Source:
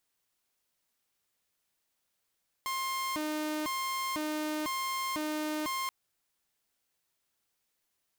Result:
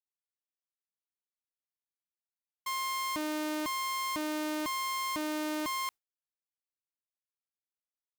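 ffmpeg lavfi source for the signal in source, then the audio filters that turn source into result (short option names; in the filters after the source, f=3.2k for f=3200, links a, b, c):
-f lavfi -i "aevalsrc='0.0355*(2*mod((683*t+377/1*(0.5-abs(mod(1*t,1)-0.5))),1)-1)':d=3.23:s=44100"
-af "agate=range=-33dB:threshold=-38dB:ratio=3:detection=peak"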